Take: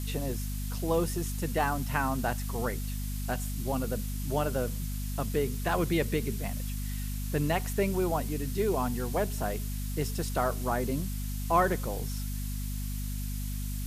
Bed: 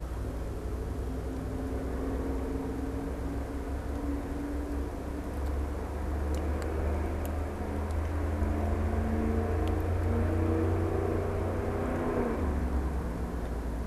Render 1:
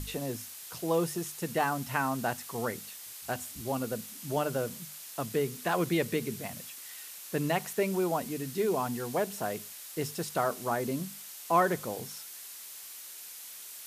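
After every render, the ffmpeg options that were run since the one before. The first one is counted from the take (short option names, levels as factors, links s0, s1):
-af "bandreject=f=50:t=h:w=6,bandreject=f=100:t=h:w=6,bandreject=f=150:t=h:w=6,bandreject=f=200:t=h:w=6,bandreject=f=250:t=h:w=6"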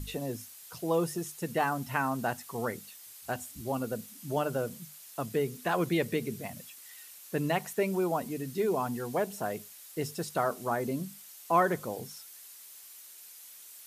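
-af "afftdn=nr=7:nf=-46"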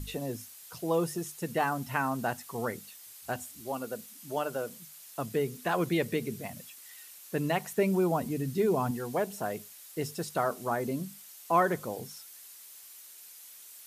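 -filter_complex "[0:a]asettb=1/sr,asplit=3[s0][s1][s2];[s0]atrim=end=3.554[s3];[s1]atrim=start=3.55:end=4.97,asetpts=PTS-STARTPTS,afade=t=in:d=0.004:c=qsin,afade=t=out:st=1.416:d=0.004:c=qsin,highpass=f=390:p=1[s4];[s2]atrim=start=4.966[s5];[s3][s4]acrossfade=d=0.004:c1=hsin:c2=qsin[s6];[s6][s5]acrossfade=d=0.004:c1=qsin:c2=hsin,asettb=1/sr,asplit=3[s7][s8][s9];[s7]atrim=end=7.724[s10];[s8]atrim=start=7.72:end=8.91,asetpts=PTS-STARTPTS,afade=t=in:d=0.004:c=qsin,afade=t=out:st=1.186:d=0.004:c=qsin,lowshelf=f=190:g=10.5[s11];[s9]atrim=start=8.906[s12];[s10][s11]acrossfade=d=0.004:c1=hsin:c2=qsin[s13];[s13][s12]acrossfade=d=0.004:c1=qsin:c2=hsin"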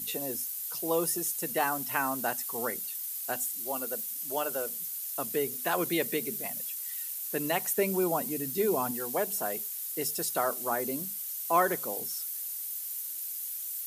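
-af "highpass=240,aemphasis=mode=production:type=50fm"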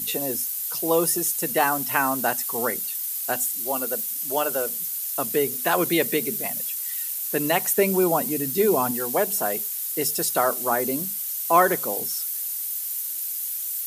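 -af "volume=2.37"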